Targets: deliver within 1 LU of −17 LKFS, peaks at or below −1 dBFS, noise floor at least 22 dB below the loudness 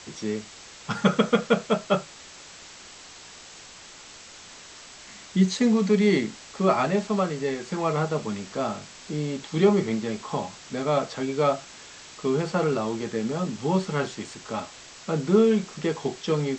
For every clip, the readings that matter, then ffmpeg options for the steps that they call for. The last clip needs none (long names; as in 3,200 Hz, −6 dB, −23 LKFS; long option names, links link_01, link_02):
background noise floor −46 dBFS; target noise floor −48 dBFS; integrated loudness −25.5 LKFS; sample peak −6.0 dBFS; target loudness −17.0 LKFS
→ -af "afftdn=noise_reduction=6:noise_floor=-46"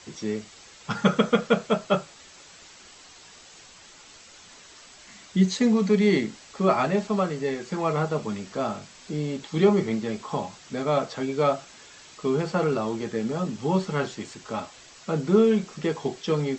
background noise floor −50 dBFS; integrated loudness −25.5 LKFS; sample peak −6.0 dBFS; target loudness −17.0 LKFS
→ -af "volume=8.5dB,alimiter=limit=-1dB:level=0:latency=1"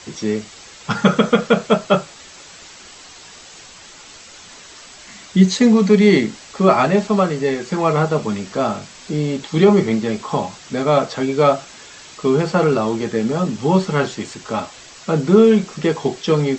integrated loudness −17.5 LKFS; sample peak −1.0 dBFS; background noise floor −41 dBFS